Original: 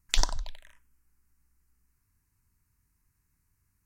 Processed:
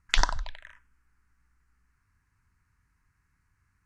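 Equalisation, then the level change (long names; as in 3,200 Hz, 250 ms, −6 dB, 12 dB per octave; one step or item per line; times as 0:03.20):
Bessel low-pass filter 6,600 Hz, order 2
parametric band 78 Hz +4.5 dB 3 octaves
parametric band 1,500 Hz +13 dB 1.6 octaves
−1.5 dB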